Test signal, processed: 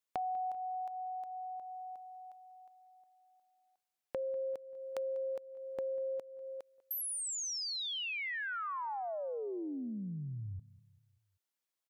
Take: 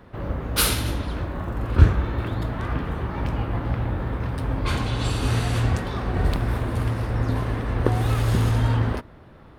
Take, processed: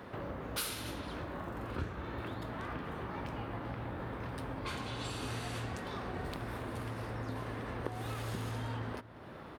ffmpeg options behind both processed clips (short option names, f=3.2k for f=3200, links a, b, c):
-filter_complex "[0:a]highpass=f=240:p=1,acompressor=threshold=-45dB:ratio=3,asplit=2[a][b];[b]adelay=195,lowpass=f=3.3k:p=1,volume=-19dB,asplit=2[c][d];[d]adelay=195,lowpass=f=3.3k:p=1,volume=0.49,asplit=2[e][f];[f]adelay=195,lowpass=f=3.3k:p=1,volume=0.49,asplit=2[g][h];[h]adelay=195,lowpass=f=3.3k:p=1,volume=0.49[i];[c][e][g][i]amix=inputs=4:normalize=0[j];[a][j]amix=inputs=2:normalize=0,volume=3dB"